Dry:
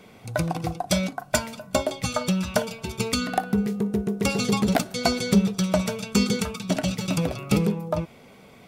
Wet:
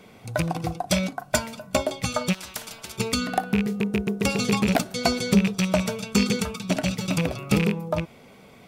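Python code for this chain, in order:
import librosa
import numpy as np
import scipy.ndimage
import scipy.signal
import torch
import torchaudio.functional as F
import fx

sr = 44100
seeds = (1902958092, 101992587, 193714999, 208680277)

y = fx.rattle_buzz(x, sr, strikes_db=-22.0, level_db=-16.0)
y = fx.spectral_comp(y, sr, ratio=4.0, at=(2.32, 2.96), fade=0.02)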